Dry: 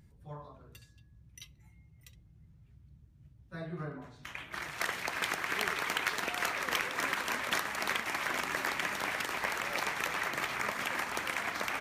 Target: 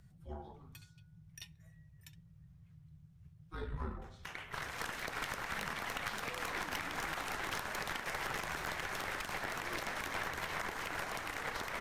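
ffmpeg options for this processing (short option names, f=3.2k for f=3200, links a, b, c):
-af "alimiter=level_in=3.5dB:limit=-24dB:level=0:latency=1:release=182,volume=-3.5dB,afreqshift=-220,aeval=exprs='(tanh(31.6*val(0)+0.65)-tanh(0.65))/31.6':c=same,volume=3dB"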